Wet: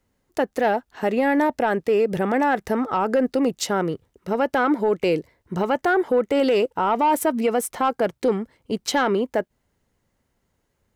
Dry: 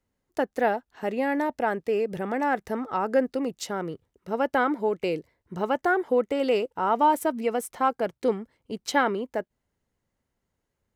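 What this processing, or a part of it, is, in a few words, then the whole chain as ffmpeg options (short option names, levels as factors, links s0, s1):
soft clipper into limiter: -af "asoftclip=type=tanh:threshold=0.188,alimiter=limit=0.0891:level=0:latency=1:release=57,volume=2.66"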